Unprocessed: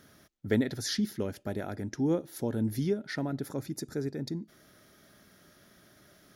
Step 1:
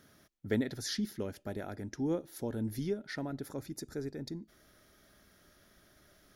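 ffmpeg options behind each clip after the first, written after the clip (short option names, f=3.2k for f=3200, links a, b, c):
-af "asubboost=boost=5.5:cutoff=58,volume=-4dB"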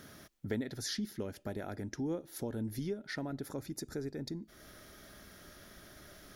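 -af "acompressor=threshold=-53dB:ratio=2,volume=9dB"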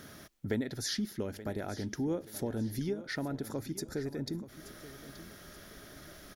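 -af "aecho=1:1:878|1756|2634:0.178|0.064|0.023,volume=3dB"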